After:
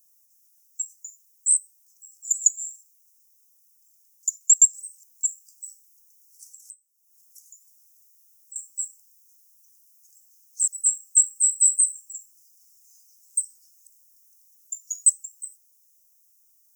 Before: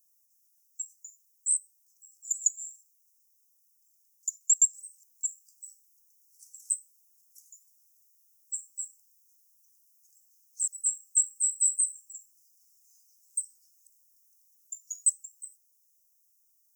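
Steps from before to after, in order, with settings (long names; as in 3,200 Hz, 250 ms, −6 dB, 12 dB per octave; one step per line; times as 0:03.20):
0:06.51–0:08.56: downward compressor 10 to 1, threshold −51 dBFS, peak gain reduction 27 dB
level +7 dB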